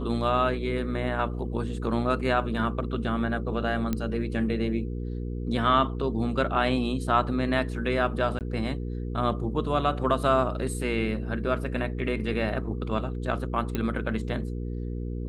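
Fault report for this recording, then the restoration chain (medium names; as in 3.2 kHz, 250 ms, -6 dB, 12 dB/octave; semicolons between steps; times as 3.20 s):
hum 60 Hz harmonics 8 -32 dBFS
3.93 s: pop -14 dBFS
8.39–8.41 s: dropout 18 ms
13.75 s: pop -15 dBFS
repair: de-click; de-hum 60 Hz, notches 8; interpolate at 8.39 s, 18 ms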